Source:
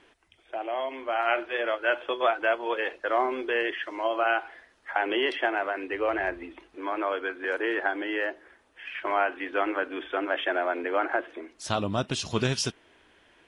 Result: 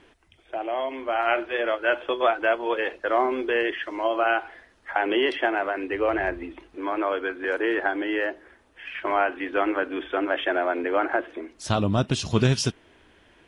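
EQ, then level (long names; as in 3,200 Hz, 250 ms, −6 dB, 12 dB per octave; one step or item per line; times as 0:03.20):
low-shelf EQ 290 Hz +8.5 dB
+1.5 dB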